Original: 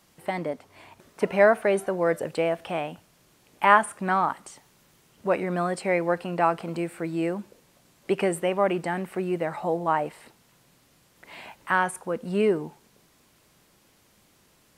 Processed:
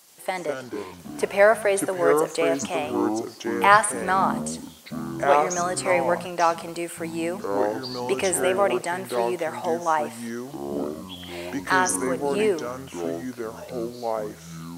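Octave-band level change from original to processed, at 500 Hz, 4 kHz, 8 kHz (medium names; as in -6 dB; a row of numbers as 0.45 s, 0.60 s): +3.0 dB, +7.5 dB, +13.0 dB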